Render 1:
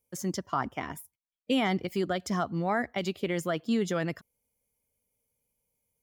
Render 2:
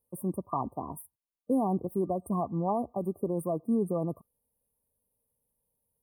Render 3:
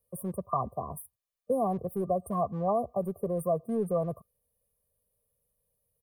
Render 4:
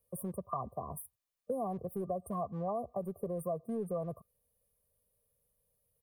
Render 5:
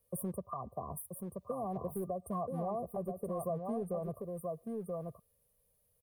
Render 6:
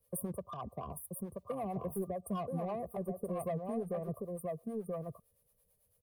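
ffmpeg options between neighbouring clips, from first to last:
-af "afftfilt=real='re*(1-between(b*sr/4096,1200,8500))':imag='im*(1-between(b*sr/4096,1200,8500))':win_size=4096:overlap=0.75"
-filter_complex "[0:a]aecho=1:1:1.7:0.81,acrossover=split=260[a][b];[a]volume=34.5dB,asoftclip=hard,volume=-34.5dB[c];[c][b]amix=inputs=2:normalize=0"
-af "acompressor=threshold=-39dB:ratio=2"
-af "aecho=1:1:980:0.501,alimiter=level_in=6.5dB:limit=-24dB:level=0:latency=1:release=426,volume=-6.5dB,volume=2.5dB"
-filter_complex "[0:a]acrossover=split=580|5000[a][b][c];[b]asoftclip=type=tanh:threshold=-39.5dB[d];[a][d][c]amix=inputs=3:normalize=0,acrossover=split=480[e][f];[e]aeval=exprs='val(0)*(1-0.7/2+0.7/2*cos(2*PI*9*n/s))':c=same[g];[f]aeval=exprs='val(0)*(1-0.7/2-0.7/2*cos(2*PI*9*n/s))':c=same[h];[g][h]amix=inputs=2:normalize=0,volume=4dB"

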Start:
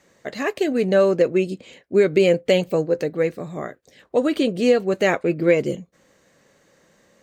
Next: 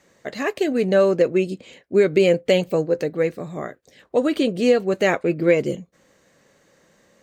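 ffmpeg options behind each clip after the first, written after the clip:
-af anull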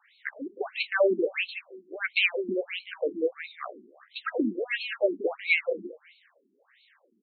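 -af "aecho=1:1:186|372|558:0.282|0.0705|0.0176,crystalizer=i=9.5:c=0,afftfilt=real='re*between(b*sr/1024,270*pow(3100/270,0.5+0.5*sin(2*PI*1.5*pts/sr))/1.41,270*pow(3100/270,0.5+0.5*sin(2*PI*1.5*pts/sr))*1.41)':imag='im*between(b*sr/1024,270*pow(3100/270,0.5+0.5*sin(2*PI*1.5*pts/sr))/1.41,270*pow(3100/270,0.5+0.5*sin(2*PI*1.5*pts/sr))*1.41)':win_size=1024:overlap=0.75,volume=-4.5dB"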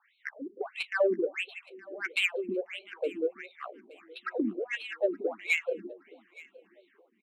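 -af "adynamicsmooth=sensitivity=1.5:basefreq=2.9k,aecho=1:1:870|1740:0.0794|0.023,volume=-3dB"

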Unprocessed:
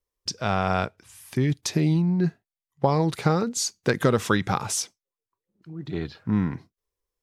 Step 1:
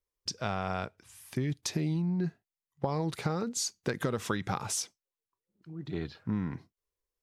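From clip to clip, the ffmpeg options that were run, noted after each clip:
-af "acompressor=threshold=-22dB:ratio=6,volume=-5dB"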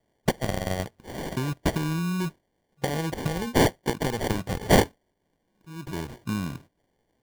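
-af "crystalizer=i=1.5:c=0,aemphasis=mode=production:type=cd,acrusher=samples=34:mix=1:aa=0.000001,volume=3dB"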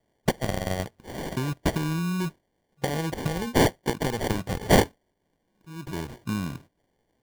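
-af anull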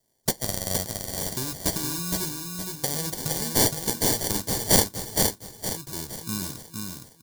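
-filter_complex "[0:a]flanger=delay=7.7:depth=2.5:regen=-56:speed=0.36:shape=sinusoidal,asplit=2[a][b];[b]aecho=0:1:466|932|1398|1864|2330:0.631|0.24|0.0911|0.0346|0.0132[c];[a][c]amix=inputs=2:normalize=0,aexciter=amount=4.5:drive=7.6:freq=3.9k,volume=-1dB"

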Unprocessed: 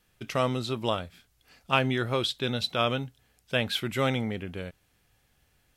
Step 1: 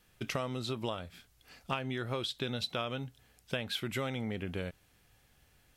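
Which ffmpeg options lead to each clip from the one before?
-af "acompressor=threshold=-33dB:ratio=12,volume=1.5dB"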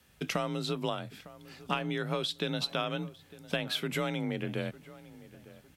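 -filter_complex "[0:a]asplit=2[a][b];[b]adelay=904,lowpass=f=1.9k:p=1,volume=-18dB,asplit=2[c][d];[d]adelay=904,lowpass=f=1.9k:p=1,volume=0.41,asplit=2[e][f];[f]adelay=904,lowpass=f=1.9k:p=1,volume=0.41[g];[a][c][e][g]amix=inputs=4:normalize=0,afreqshift=34,volume=3dB"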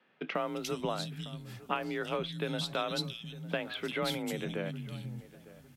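-filter_complex "[0:a]acrossover=split=200|3100[a][b][c];[c]adelay=350[d];[a]adelay=490[e];[e][b][d]amix=inputs=3:normalize=0"

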